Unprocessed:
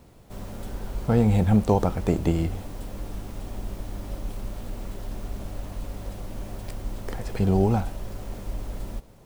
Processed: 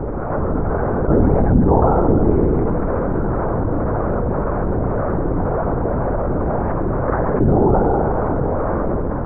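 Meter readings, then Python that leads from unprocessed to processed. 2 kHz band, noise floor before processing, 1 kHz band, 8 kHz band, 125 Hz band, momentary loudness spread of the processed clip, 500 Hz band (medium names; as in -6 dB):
+11.0 dB, -50 dBFS, +13.5 dB, under -30 dB, +7.5 dB, 6 LU, +12.5 dB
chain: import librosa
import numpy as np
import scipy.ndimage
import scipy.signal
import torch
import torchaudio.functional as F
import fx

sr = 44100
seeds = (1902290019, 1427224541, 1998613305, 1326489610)

p1 = scipy.signal.sosfilt(scipy.signal.ellip(3, 1.0, 40, [190.0, 1400.0], 'bandpass', fs=sr, output='sos'), x)
p2 = fx.harmonic_tremolo(p1, sr, hz=1.9, depth_pct=50, crossover_hz=480.0)
p3 = p2 + fx.echo_heads(p2, sr, ms=67, heads='first and second', feedback_pct=61, wet_db=-8.5, dry=0)
p4 = fx.lpc_vocoder(p3, sr, seeds[0], excitation='whisper', order=8)
p5 = fx.env_flatten(p4, sr, amount_pct=70)
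y = F.gain(torch.from_numpy(p5), 5.5).numpy()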